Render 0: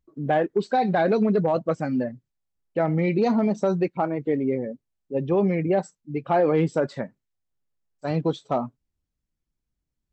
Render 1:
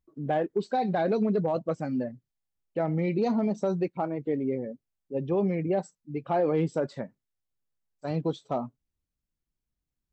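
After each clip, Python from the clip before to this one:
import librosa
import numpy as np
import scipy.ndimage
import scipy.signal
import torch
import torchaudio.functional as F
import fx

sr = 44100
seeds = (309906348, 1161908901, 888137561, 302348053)

y = fx.dynamic_eq(x, sr, hz=1700.0, q=0.97, threshold_db=-40.0, ratio=4.0, max_db=-4)
y = F.gain(torch.from_numpy(y), -4.5).numpy()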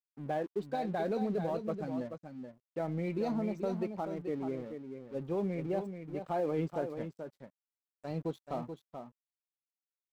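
y = fx.dmg_crackle(x, sr, seeds[0], per_s=260.0, level_db=-58.0)
y = np.sign(y) * np.maximum(np.abs(y) - 10.0 ** (-47.0 / 20.0), 0.0)
y = y + 10.0 ** (-8.0 / 20.0) * np.pad(y, (int(432 * sr / 1000.0), 0))[:len(y)]
y = F.gain(torch.from_numpy(y), -7.0).numpy()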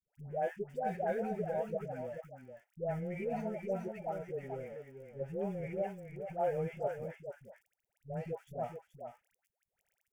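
y = fx.dmg_crackle(x, sr, seeds[1], per_s=23.0, level_db=-51.0)
y = fx.fixed_phaser(y, sr, hz=1100.0, stages=6)
y = fx.dispersion(y, sr, late='highs', ms=135.0, hz=680.0)
y = F.gain(torch.from_numpy(y), 1.0).numpy()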